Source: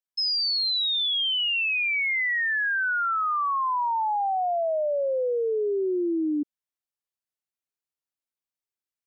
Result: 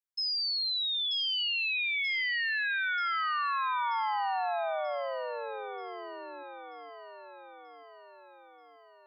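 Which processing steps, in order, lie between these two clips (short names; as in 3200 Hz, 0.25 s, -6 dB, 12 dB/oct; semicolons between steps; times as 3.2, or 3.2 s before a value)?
HPF 610 Hz 24 dB/oct; on a send: echo with dull and thin repeats by turns 0.467 s, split 1300 Hz, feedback 75%, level -7 dB; on the sum: gain -6 dB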